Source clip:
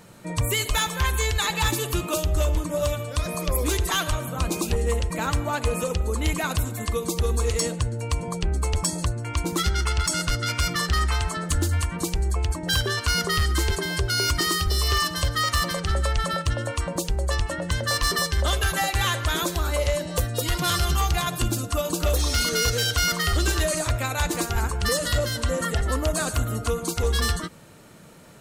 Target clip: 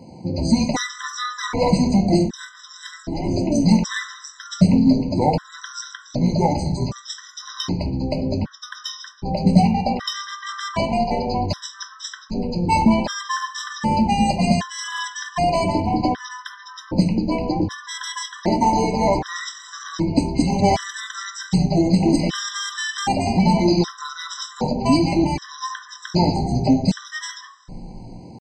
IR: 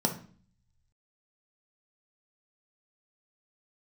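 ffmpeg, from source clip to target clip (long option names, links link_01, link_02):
-filter_complex "[0:a]asetrate=24750,aresample=44100,atempo=1.7818[link_01];[1:a]atrim=start_sample=2205[link_02];[link_01][link_02]afir=irnorm=-1:irlink=0,afftfilt=real='re*gt(sin(2*PI*0.65*pts/sr)*(1-2*mod(floor(b*sr/1024/1000),2)),0)':imag='im*gt(sin(2*PI*0.65*pts/sr)*(1-2*mod(floor(b*sr/1024/1000),2)),0)':win_size=1024:overlap=0.75,volume=-3dB"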